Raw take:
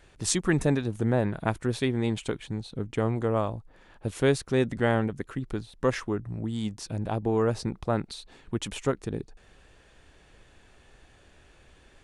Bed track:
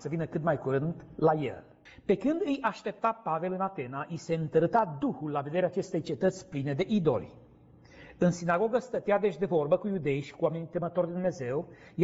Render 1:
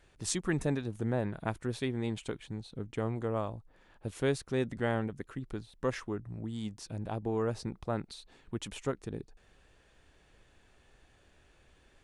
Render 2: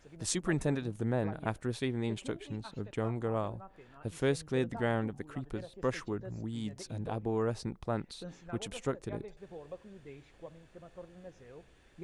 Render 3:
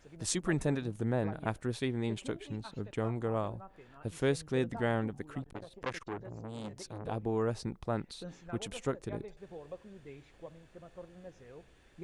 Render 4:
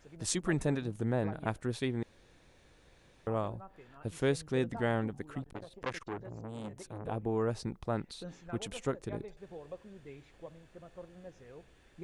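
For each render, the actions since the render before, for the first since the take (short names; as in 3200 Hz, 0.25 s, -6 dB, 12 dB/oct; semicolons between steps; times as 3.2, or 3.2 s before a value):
gain -7 dB
add bed track -20 dB
5.42–7.06 core saturation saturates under 1900 Hz
2.03–3.27 room tone; 6.41–7.5 bell 4800 Hz -10.5 dB 0.73 oct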